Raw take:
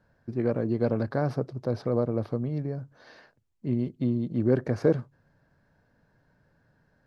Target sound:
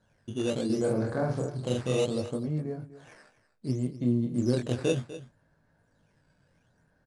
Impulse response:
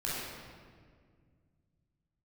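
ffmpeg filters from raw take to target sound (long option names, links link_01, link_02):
-filter_complex "[0:a]asplit=2[link_01][link_02];[link_02]alimiter=limit=-18.5dB:level=0:latency=1:release=36,volume=1.5dB[link_03];[link_01][link_03]amix=inputs=2:normalize=0,flanger=delay=18.5:depth=6.7:speed=0.35,acrusher=samples=8:mix=1:aa=0.000001:lfo=1:lforange=12.8:lforate=0.67,asettb=1/sr,asplit=3[link_04][link_05][link_06];[link_04]atrim=end=0.654[link_07];[link_05]atrim=start=0.65:end=2.06,asetpts=PTS-STARTPTS,afade=type=in:duration=0.004:curve=qsin,afade=type=out:start_time=1.406:duration=0.004:curve=qsin,asplit=2[link_08][link_09];[link_09]adelay=46,volume=-3dB[link_10];[link_08][link_10]amix=inputs=2:normalize=0,atrim=end_sample=62181[link_11];[link_06]atrim=start=2.056[link_12];[link_07][link_11]acrossfade=duration=0.004:curve1=hsin:curve2=qsin[link_13];[link_13][link_12]acrossfade=duration=0.004:curve1=qsin:curve2=hsin,asplit=2[link_14][link_15];[link_15]aecho=0:1:248:0.178[link_16];[link_14][link_16]amix=inputs=2:normalize=0,volume=-5.5dB" -ar 22050 -c:a adpcm_ima_wav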